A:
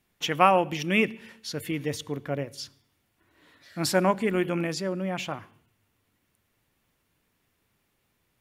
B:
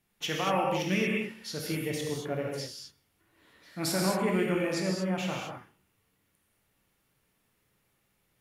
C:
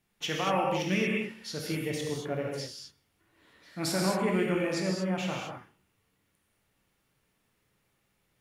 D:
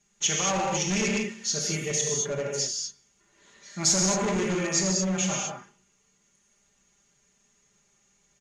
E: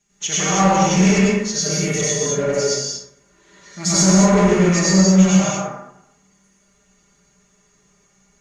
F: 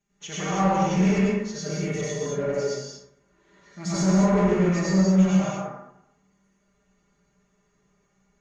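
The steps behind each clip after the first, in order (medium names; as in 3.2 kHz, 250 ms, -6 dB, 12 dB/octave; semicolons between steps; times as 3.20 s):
peaking EQ 11 kHz +4 dB 0.49 oct; peak limiter -15.5 dBFS, peak gain reduction 11 dB; gated-style reverb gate 260 ms flat, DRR -2 dB; trim -5 dB
peaking EQ 13 kHz -5.5 dB 0.6 oct
comb 5 ms, depth 96%; overload inside the chain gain 24 dB; resonant low-pass 6.6 kHz, resonance Q 15
plate-style reverb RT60 0.8 s, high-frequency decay 0.35×, pre-delay 80 ms, DRR -9 dB
low-pass 1.8 kHz 6 dB/octave; trim -6 dB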